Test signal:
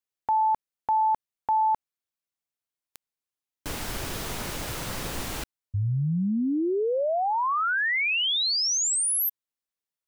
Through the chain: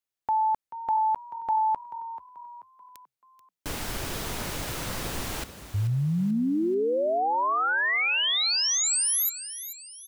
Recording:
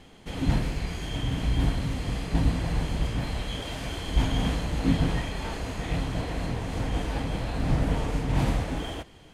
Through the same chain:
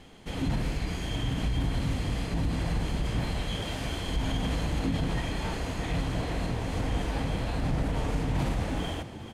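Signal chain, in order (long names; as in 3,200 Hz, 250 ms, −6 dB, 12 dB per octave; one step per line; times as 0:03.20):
brickwall limiter −20.5 dBFS
echo with shifted repeats 435 ms, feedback 43%, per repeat +42 Hz, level −13 dB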